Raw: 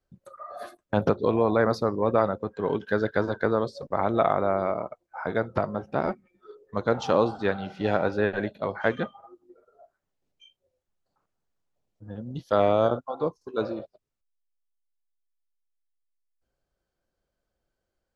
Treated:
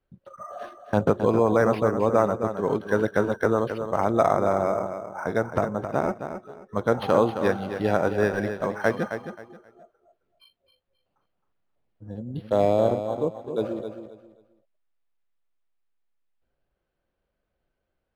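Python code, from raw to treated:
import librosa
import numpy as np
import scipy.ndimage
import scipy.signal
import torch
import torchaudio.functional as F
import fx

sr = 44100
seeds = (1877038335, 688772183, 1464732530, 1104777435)

y = fx.peak_eq(x, sr, hz=1300.0, db=-13.5, octaves=0.63, at=(12.08, 13.65))
y = fx.echo_feedback(y, sr, ms=266, feedback_pct=25, wet_db=-9)
y = np.interp(np.arange(len(y)), np.arange(len(y))[::6], y[::6])
y = y * 10.0 ** (2.0 / 20.0)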